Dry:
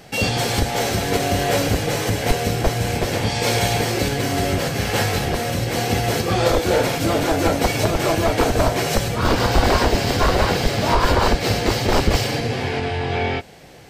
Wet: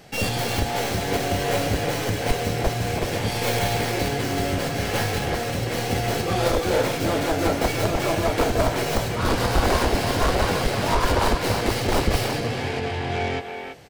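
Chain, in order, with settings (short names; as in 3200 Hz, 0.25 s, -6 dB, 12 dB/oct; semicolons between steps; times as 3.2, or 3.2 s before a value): tracing distortion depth 0.13 ms; speakerphone echo 0.33 s, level -6 dB; gain -4 dB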